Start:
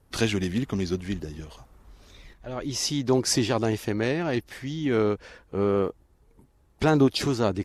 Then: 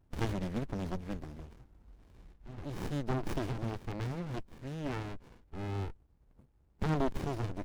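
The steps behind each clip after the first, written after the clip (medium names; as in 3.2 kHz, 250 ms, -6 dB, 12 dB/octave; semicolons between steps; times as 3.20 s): sliding maximum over 65 samples; trim -5.5 dB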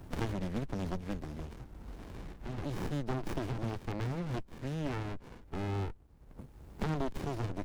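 three bands compressed up and down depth 70%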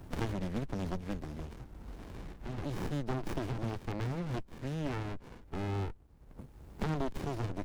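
no audible change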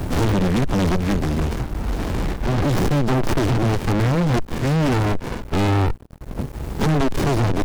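waveshaping leveller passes 5; trim +5.5 dB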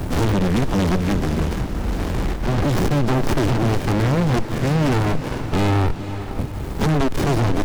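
echo that smears into a reverb 478 ms, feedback 52%, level -11 dB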